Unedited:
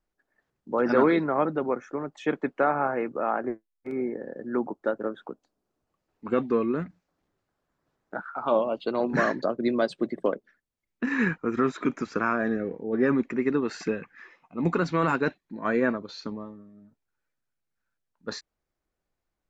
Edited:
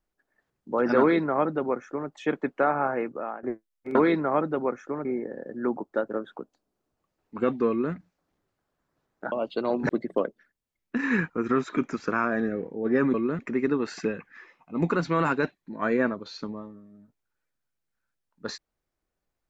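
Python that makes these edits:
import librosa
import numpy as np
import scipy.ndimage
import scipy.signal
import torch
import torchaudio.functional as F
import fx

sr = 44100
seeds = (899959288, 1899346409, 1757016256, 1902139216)

y = fx.edit(x, sr, fx.duplicate(start_s=0.99, length_s=1.1, to_s=3.95),
    fx.fade_out_to(start_s=3.0, length_s=0.43, floor_db=-16.0),
    fx.duplicate(start_s=6.59, length_s=0.25, to_s=13.22),
    fx.cut(start_s=8.22, length_s=0.4),
    fx.cut(start_s=9.19, length_s=0.78), tone=tone)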